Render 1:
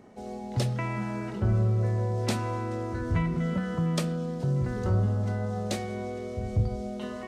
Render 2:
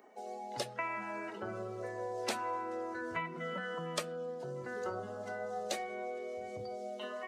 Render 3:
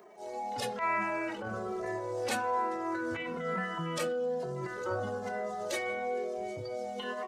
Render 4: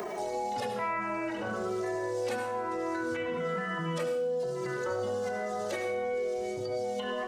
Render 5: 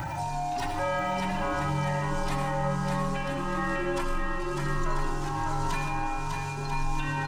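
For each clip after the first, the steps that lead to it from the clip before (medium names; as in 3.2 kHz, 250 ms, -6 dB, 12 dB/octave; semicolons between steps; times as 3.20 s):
expander on every frequency bin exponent 1.5; high-pass 530 Hz 12 dB/octave; three bands compressed up and down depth 40%; trim +1.5 dB
transient shaper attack -11 dB, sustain +6 dB; endless flanger 2.5 ms -1.1 Hz; trim +9 dB
on a send at -5 dB: reverberation RT60 0.55 s, pre-delay 65 ms; on the sum: three bands compressed up and down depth 100%; trim -2.5 dB
every band turned upside down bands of 500 Hz; in parallel at -3 dB: saturation -35.5 dBFS, distortion -10 dB; on the sum: bouncing-ball echo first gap 600 ms, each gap 0.65×, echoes 5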